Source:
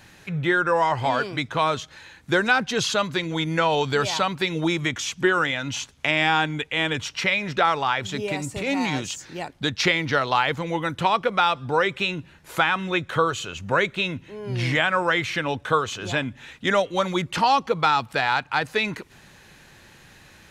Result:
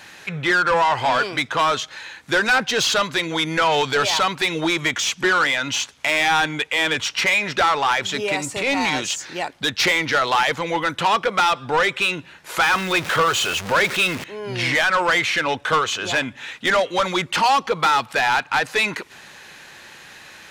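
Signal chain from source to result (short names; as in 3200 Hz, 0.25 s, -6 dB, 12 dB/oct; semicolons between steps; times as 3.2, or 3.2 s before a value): 12.63–14.24 zero-crossing step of -29.5 dBFS; overdrive pedal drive 20 dB, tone 7600 Hz, clips at -4.5 dBFS; gain -4.5 dB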